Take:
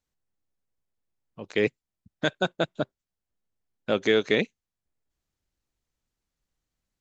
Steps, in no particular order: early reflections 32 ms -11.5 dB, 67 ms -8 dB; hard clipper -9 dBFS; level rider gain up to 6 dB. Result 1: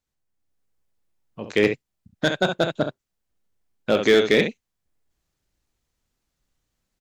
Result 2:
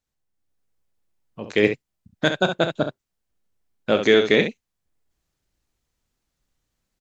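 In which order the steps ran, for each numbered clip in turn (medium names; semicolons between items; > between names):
early reflections > level rider > hard clipper; early reflections > hard clipper > level rider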